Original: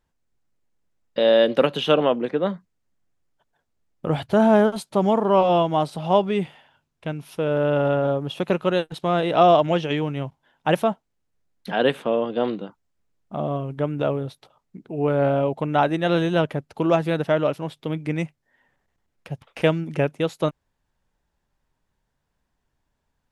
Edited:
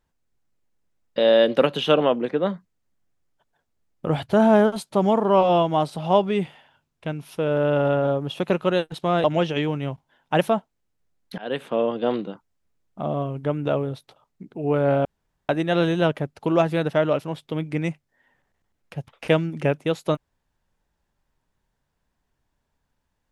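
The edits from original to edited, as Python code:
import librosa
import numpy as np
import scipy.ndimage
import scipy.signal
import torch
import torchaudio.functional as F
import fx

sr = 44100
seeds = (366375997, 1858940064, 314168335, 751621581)

y = fx.edit(x, sr, fx.cut(start_s=9.24, length_s=0.34),
    fx.fade_in_from(start_s=11.72, length_s=0.42, floor_db=-21.0),
    fx.room_tone_fill(start_s=15.39, length_s=0.44), tone=tone)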